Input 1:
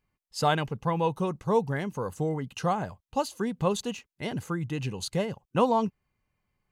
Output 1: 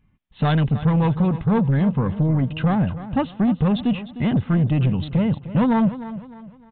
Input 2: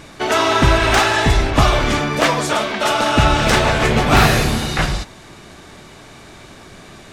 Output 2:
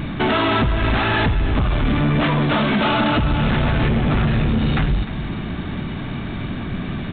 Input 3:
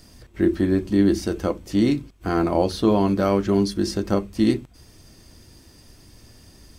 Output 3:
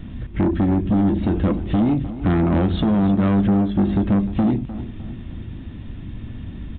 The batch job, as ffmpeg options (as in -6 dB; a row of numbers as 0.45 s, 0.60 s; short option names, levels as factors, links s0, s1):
-af "lowshelf=f=320:t=q:w=1.5:g=9,acompressor=threshold=0.141:ratio=16,aresample=8000,asoftclip=type=tanh:threshold=0.0794,aresample=44100,aecho=1:1:304|608|912|1216:0.2|0.0738|0.0273|0.0101,volume=2.51"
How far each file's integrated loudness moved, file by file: +9.0 LU, -4.5 LU, +2.5 LU